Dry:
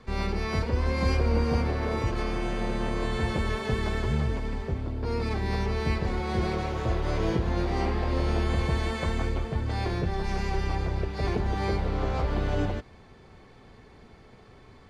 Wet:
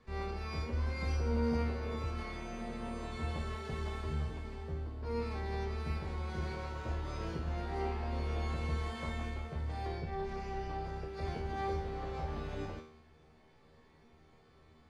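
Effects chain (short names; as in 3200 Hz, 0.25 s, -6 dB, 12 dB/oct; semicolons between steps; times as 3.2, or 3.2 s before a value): 9.87–10.85 high shelf 6300 Hz -11 dB; resonator 78 Hz, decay 0.63 s, harmonics all, mix 90%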